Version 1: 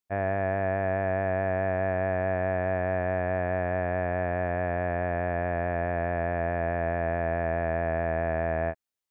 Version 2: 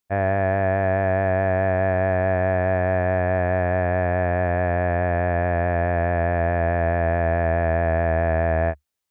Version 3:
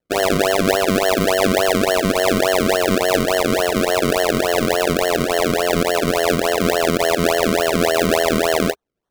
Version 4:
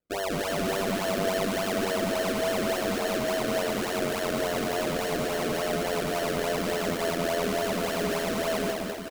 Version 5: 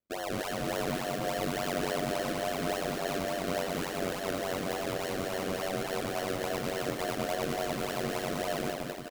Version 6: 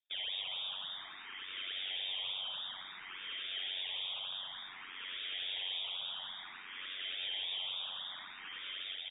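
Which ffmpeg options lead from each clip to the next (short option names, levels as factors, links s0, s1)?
-af "equalizer=f=72:w=2.8:g=7,acontrast=60"
-af "highpass=f=420:t=q:w=4.9,acrusher=samples=35:mix=1:aa=0.000001:lfo=1:lforange=35:lforate=3.5"
-filter_complex "[0:a]asoftclip=type=tanh:threshold=0.133,asplit=2[s0][s1];[s1]aecho=0:1:200|380|542|687.8|819:0.631|0.398|0.251|0.158|0.1[s2];[s0][s2]amix=inputs=2:normalize=0,volume=0.422"
-af "aeval=exprs='val(0)*sin(2*PI*47*n/s)':c=same,volume=0.794"
-filter_complex "[0:a]asoftclip=type=hard:threshold=0.0158,lowpass=f=3200:t=q:w=0.5098,lowpass=f=3200:t=q:w=0.6013,lowpass=f=3200:t=q:w=0.9,lowpass=f=3200:t=q:w=2.563,afreqshift=-3800,asplit=2[s0][s1];[s1]afreqshift=0.56[s2];[s0][s2]amix=inputs=2:normalize=1"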